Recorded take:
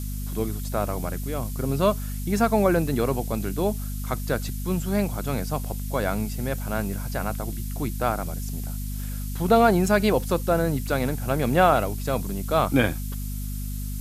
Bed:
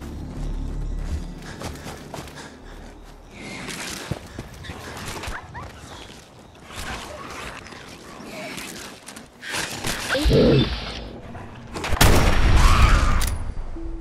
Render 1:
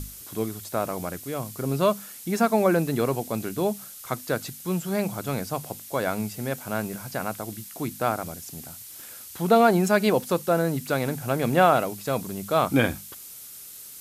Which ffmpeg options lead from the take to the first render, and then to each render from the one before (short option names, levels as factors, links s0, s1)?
-af "bandreject=f=50:t=h:w=6,bandreject=f=100:t=h:w=6,bandreject=f=150:t=h:w=6,bandreject=f=200:t=h:w=6,bandreject=f=250:t=h:w=6"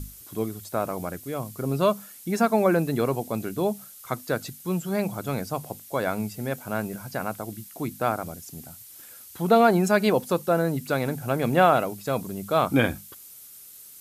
-af "afftdn=nr=6:nf=-43"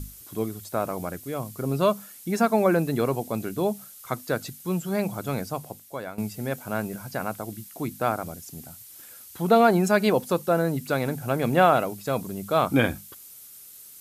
-filter_complex "[0:a]asplit=2[s0][s1];[s0]atrim=end=6.18,asetpts=PTS-STARTPTS,afade=t=out:st=5.4:d=0.78:silence=0.223872[s2];[s1]atrim=start=6.18,asetpts=PTS-STARTPTS,afade=t=in:d=0.004:c=hsin:silence=0.223872[s3];[s2][s3]concat=n=2:v=0:a=1"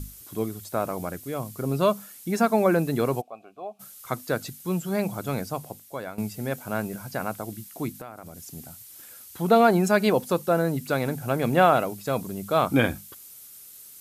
-filter_complex "[0:a]asplit=3[s0][s1][s2];[s0]afade=t=out:st=3.2:d=0.02[s3];[s1]asplit=3[s4][s5][s6];[s4]bandpass=f=730:t=q:w=8,volume=1[s7];[s5]bandpass=f=1090:t=q:w=8,volume=0.501[s8];[s6]bandpass=f=2440:t=q:w=8,volume=0.355[s9];[s7][s8][s9]amix=inputs=3:normalize=0,afade=t=in:st=3.2:d=0.02,afade=t=out:st=3.79:d=0.02[s10];[s2]afade=t=in:st=3.79:d=0.02[s11];[s3][s10][s11]amix=inputs=3:normalize=0,asplit=3[s12][s13][s14];[s12]afade=t=out:st=7.91:d=0.02[s15];[s13]acompressor=threshold=0.0158:ratio=6:attack=3.2:release=140:knee=1:detection=peak,afade=t=in:st=7.91:d=0.02,afade=t=out:st=8.47:d=0.02[s16];[s14]afade=t=in:st=8.47:d=0.02[s17];[s15][s16][s17]amix=inputs=3:normalize=0"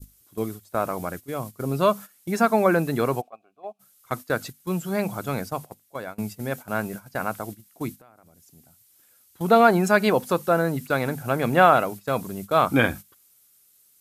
-af "adynamicequalizer=threshold=0.0178:dfrequency=1400:dqfactor=0.82:tfrequency=1400:tqfactor=0.82:attack=5:release=100:ratio=0.375:range=2.5:mode=boostabove:tftype=bell,agate=range=0.224:threshold=0.02:ratio=16:detection=peak"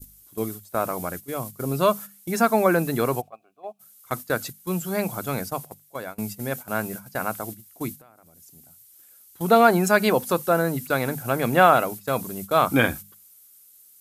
-af "highshelf=f=7500:g=9,bandreject=f=50:t=h:w=6,bandreject=f=100:t=h:w=6,bandreject=f=150:t=h:w=6,bandreject=f=200:t=h:w=6"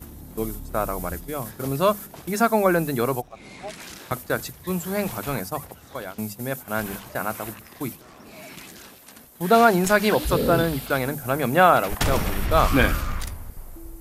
-filter_complex "[1:a]volume=0.376[s0];[0:a][s0]amix=inputs=2:normalize=0"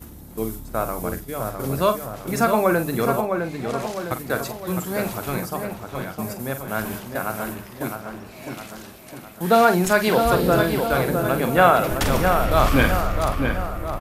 -filter_complex "[0:a]asplit=2[s0][s1];[s1]adelay=45,volume=0.335[s2];[s0][s2]amix=inputs=2:normalize=0,asplit=2[s3][s4];[s4]adelay=658,lowpass=f=2400:p=1,volume=0.562,asplit=2[s5][s6];[s6]adelay=658,lowpass=f=2400:p=1,volume=0.54,asplit=2[s7][s8];[s8]adelay=658,lowpass=f=2400:p=1,volume=0.54,asplit=2[s9][s10];[s10]adelay=658,lowpass=f=2400:p=1,volume=0.54,asplit=2[s11][s12];[s12]adelay=658,lowpass=f=2400:p=1,volume=0.54,asplit=2[s13][s14];[s14]adelay=658,lowpass=f=2400:p=1,volume=0.54,asplit=2[s15][s16];[s16]adelay=658,lowpass=f=2400:p=1,volume=0.54[s17];[s3][s5][s7][s9][s11][s13][s15][s17]amix=inputs=8:normalize=0"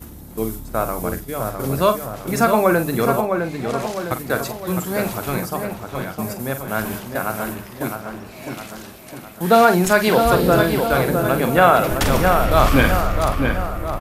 -af "volume=1.41,alimiter=limit=0.891:level=0:latency=1"